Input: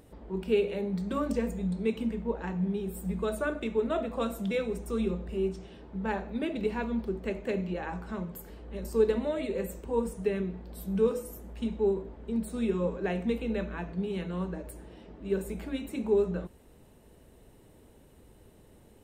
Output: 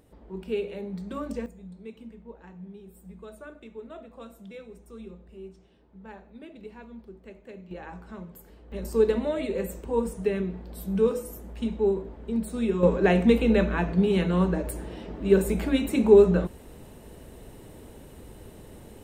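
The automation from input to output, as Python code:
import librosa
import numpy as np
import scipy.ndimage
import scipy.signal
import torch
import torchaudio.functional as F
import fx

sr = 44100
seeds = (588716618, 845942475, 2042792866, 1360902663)

y = fx.gain(x, sr, db=fx.steps((0.0, -3.5), (1.46, -13.0), (7.71, -5.0), (8.72, 3.0), (12.83, 10.5)))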